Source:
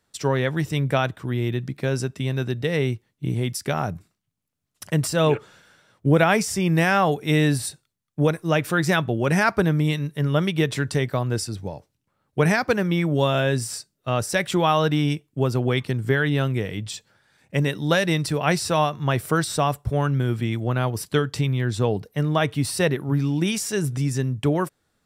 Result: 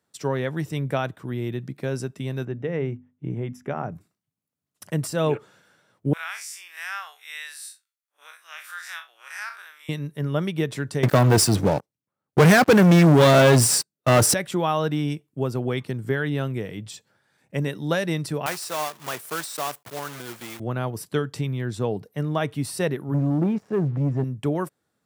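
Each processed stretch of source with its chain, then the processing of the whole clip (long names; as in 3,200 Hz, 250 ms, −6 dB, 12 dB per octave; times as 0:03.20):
0:02.45–0:03.92: moving average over 10 samples + mains-hum notches 50/100/150/200/250 Hz
0:06.13–0:09.89: spectrum smeared in time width 93 ms + high-pass filter 1,300 Hz 24 dB per octave
0:11.03–0:14.34: high-pass filter 48 Hz 6 dB per octave + leveller curve on the samples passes 5
0:18.46–0:20.60: one scale factor per block 3 bits + high-pass filter 960 Hz 6 dB per octave
0:23.14–0:24.24: low-pass filter 1,000 Hz + leveller curve on the samples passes 2
whole clip: high-pass filter 120 Hz; parametric band 3,600 Hz −4.5 dB 2.7 octaves; level −2.5 dB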